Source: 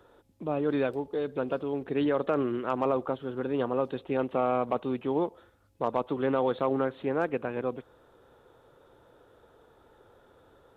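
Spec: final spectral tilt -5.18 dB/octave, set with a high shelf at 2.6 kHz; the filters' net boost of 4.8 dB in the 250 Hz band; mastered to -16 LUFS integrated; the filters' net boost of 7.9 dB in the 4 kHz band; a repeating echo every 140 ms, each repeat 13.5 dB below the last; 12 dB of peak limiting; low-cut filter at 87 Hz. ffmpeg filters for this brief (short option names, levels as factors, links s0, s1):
-af "highpass=87,equalizer=f=250:t=o:g=5.5,highshelf=f=2600:g=6,equalizer=f=4000:t=o:g=5.5,alimiter=level_in=1.06:limit=0.0631:level=0:latency=1,volume=0.944,aecho=1:1:140|280:0.211|0.0444,volume=7.94"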